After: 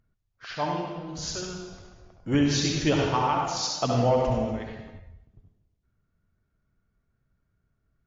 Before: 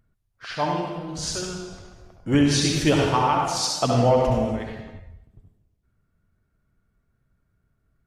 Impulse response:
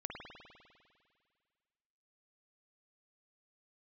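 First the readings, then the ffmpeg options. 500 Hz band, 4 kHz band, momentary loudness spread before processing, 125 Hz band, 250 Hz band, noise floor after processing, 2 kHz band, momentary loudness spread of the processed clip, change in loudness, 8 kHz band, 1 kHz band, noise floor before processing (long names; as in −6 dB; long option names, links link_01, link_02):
−4.0 dB, −4.0 dB, 17 LU, −4.0 dB, −4.0 dB, −76 dBFS, −4.0 dB, 17 LU, −4.0 dB, −5.0 dB, −4.0 dB, −72 dBFS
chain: -af "volume=-4dB" -ar 16000 -c:a wmav2 -b:a 128k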